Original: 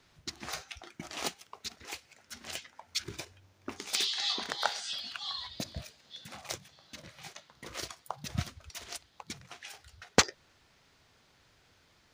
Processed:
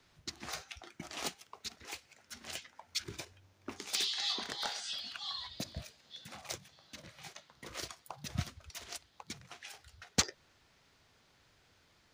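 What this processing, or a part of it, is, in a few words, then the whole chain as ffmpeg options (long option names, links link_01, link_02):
one-band saturation: -filter_complex "[0:a]acrossover=split=230|3700[link_01][link_02][link_03];[link_02]asoftclip=type=tanh:threshold=-28dB[link_04];[link_01][link_04][link_03]amix=inputs=3:normalize=0,volume=-2.5dB"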